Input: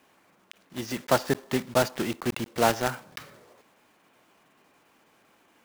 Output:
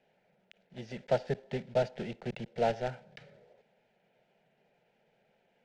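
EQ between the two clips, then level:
head-to-tape spacing loss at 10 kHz 33 dB
parametric band 270 Hz −5.5 dB 1.2 octaves
phaser with its sweep stopped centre 300 Hz, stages 6
0.0 dB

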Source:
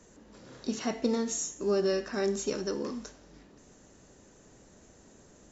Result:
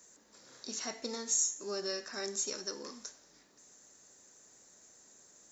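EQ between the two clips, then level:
spectral tilt +4 dB per octave
parametric band 2,900 Hz −7 dB 0.48 octaves
−6.5 dB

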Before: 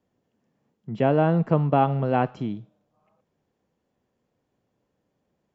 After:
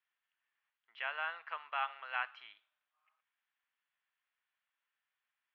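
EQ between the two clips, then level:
high-pass filter 1,400 Hz 24 dB per octave
low-pass filter 3,300 Hz 24 dB per octave
0.0 dB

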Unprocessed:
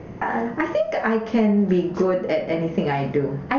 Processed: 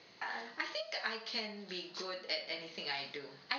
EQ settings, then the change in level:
resonant band-pass 4,200 Hz, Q 9.7
+14.5 dB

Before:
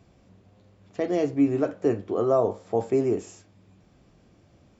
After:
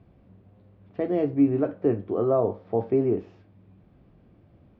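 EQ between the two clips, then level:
low-pass filter 5,100 Hz 24 dB per octave
high-frequency loss of the air 320 metres
low-shelf EQ 450 Hz +5 dB
−2.0 dB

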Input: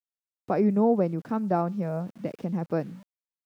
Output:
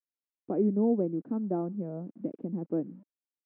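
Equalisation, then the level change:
resonant band-pass 300 Hz, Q 2.6
high-frequency loss of the air 180 metres
+3.0 dB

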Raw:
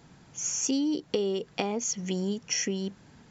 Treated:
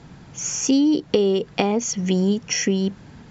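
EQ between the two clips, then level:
high-frequency loss of the air 67 metres
low-shelf EQ 170 Hz +5 dB
+9.0 dB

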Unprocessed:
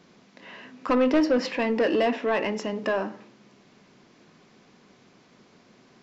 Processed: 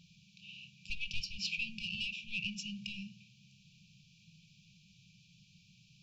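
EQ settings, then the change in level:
linear-phase brick-wall band-stop 190–2,300 Hz
high-shelf EQ 4,100 Hz −6 dB
+1.5 dB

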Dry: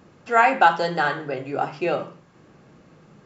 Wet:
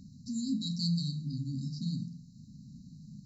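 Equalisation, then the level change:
linear-phase brick-wall band-stop 270–3,800 Hz
high-shelf EQ 4,900 Hz −5 dB
+4.0 dB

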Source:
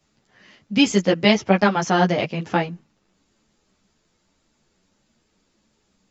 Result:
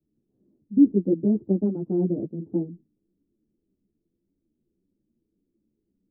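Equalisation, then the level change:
dynamic equaliser 270 Hz, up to +5 dB, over −27 dBFS, Q 0.78
transistor ladder low-pass 380 Hz, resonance 55%
high-frequency loss of the air 460 metres
0.0 dB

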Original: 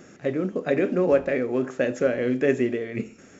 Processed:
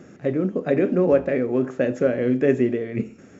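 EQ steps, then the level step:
high-pass filter 77 Hz
spectral tilt −2 dB per octave
0.0 dB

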